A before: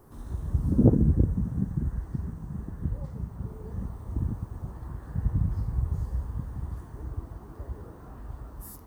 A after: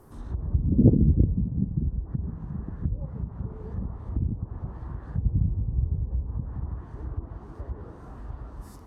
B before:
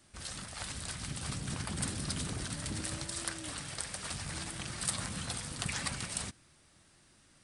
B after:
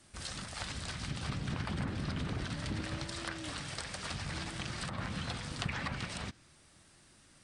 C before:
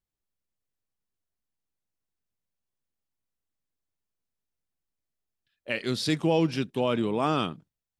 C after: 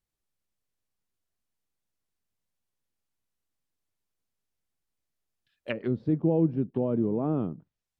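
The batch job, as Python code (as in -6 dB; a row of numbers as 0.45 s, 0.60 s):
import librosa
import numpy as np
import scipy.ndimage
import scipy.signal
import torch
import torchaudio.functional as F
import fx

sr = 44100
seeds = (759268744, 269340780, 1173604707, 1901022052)

y = fx.env_lowpass_down(x, sr, base_hz=440.0, full_db=-26.5)
y = y * librosa.db_to_amplitude(2.0)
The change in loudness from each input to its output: +2.0 LU, -1.5 LU, -1.0 LU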